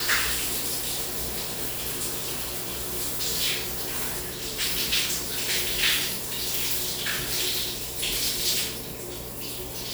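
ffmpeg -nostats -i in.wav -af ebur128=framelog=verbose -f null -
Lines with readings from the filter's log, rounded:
Integrated loudness:
  I:         -25.6 LUFS
  Threshold: -35.6 LUFS
Loudness range:
  LRA:         2.8 LU
  Threshold: -45.3 LUFS
  LRA low:   -26.9 LUFS
  LRA high:  -24.1 LUFS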